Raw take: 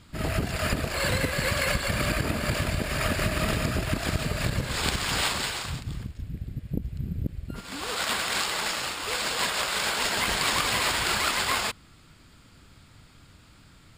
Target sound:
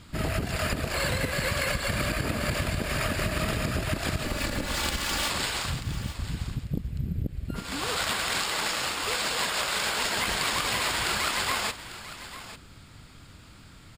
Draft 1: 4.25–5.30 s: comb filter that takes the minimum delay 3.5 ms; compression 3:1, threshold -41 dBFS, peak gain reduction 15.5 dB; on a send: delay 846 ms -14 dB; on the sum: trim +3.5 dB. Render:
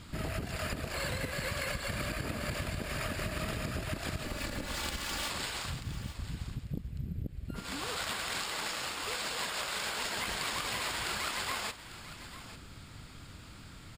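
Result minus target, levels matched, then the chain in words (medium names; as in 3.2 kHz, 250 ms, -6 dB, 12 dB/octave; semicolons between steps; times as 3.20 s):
compression: peak gain reduction +7.5 dB
4.25–5.30 s: comb filter that takes the minimum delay 3.5 ms; compression 3:1, threshold -29.5 dBFS, peak gain reduction 7.5 dB; on a send: delay 846 ms -14 dB; on the sum: trim +3.5 dB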